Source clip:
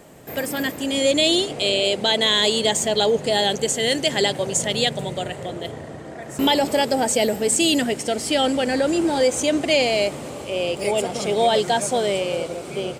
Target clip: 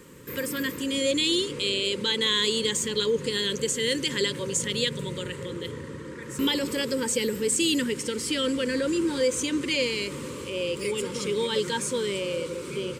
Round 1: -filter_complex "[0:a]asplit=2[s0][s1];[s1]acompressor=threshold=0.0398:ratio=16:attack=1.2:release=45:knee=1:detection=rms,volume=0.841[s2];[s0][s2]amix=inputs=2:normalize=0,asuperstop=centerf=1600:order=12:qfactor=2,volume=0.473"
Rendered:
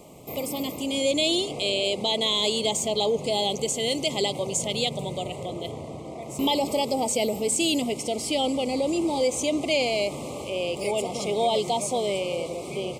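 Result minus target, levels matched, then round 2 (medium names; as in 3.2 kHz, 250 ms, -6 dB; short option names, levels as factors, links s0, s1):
1 kHz band +8.5 dB
-filter_complex "[0:a]asplit=2[s0][s1];[s1]acompressor=threshold=0.0398:ratio=16:attack=1.2:release=45:knee=1:detection=rms,volume=0.841[s2];[s0][s2]amix=inputs=2:normalize=0,asuperstop=centerf=710:order=12:qfactor=2,volume=0.473"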